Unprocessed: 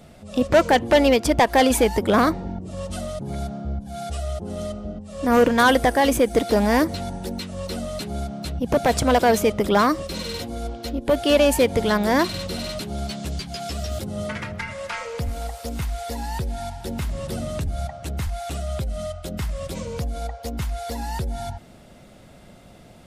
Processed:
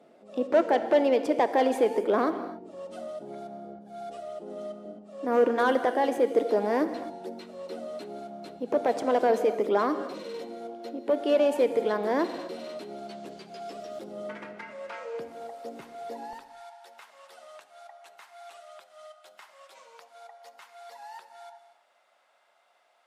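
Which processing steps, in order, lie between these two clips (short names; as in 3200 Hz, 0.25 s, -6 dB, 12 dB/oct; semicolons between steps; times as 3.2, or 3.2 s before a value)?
HPF 330 Hz 24 dB/oct, from 16.33 s 860 Hz; tilt -4 dB/oct; non-linear reverb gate 0.29 s flat, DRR 9.5 dB; gain -8.5 dB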